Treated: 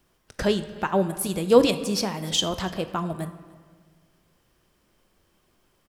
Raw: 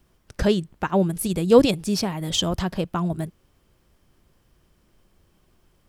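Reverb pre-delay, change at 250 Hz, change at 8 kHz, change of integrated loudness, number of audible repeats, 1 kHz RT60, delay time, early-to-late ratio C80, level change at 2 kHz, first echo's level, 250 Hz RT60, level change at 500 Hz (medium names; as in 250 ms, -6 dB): 21 ms, -3.5 dB, 0.0 dB, -2.0 dB, 1, 1.5 s, 296 ms, 13.5 dB, +0.5 dB, -24.0 dB, 1.9 s, -1.5 dB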